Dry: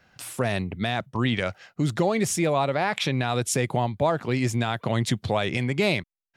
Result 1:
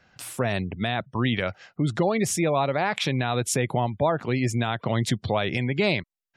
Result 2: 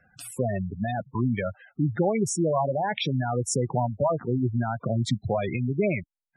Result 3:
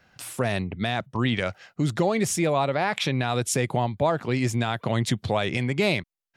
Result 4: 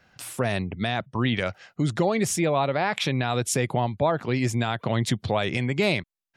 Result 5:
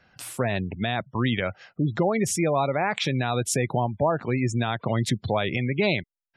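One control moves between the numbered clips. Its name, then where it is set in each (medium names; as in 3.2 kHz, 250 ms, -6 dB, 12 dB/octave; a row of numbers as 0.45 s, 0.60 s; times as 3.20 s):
spectral gate, under each frame's peak: -35 dB, -10 dB, -60 dB, -45 dB, -25 dB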